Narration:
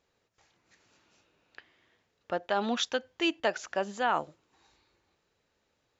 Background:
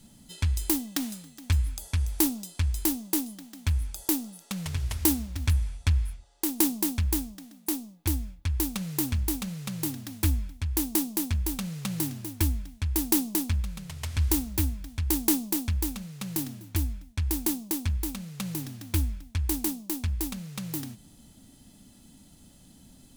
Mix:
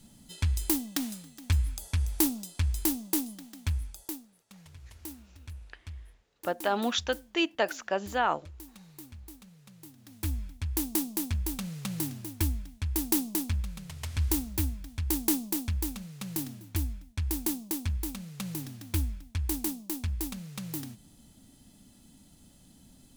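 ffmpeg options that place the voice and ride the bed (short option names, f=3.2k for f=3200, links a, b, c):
-filter_complex "[0:a]adelay=4150,volume=1dB[a];[1:a]volume=15dB,afade=t=out:st=3.49:d=0.78:silence=0.125893,afade=t=in:st=9.96:d=0.58:silence=0.149624[b];[a][b]amix=inputs=2:normalize=0"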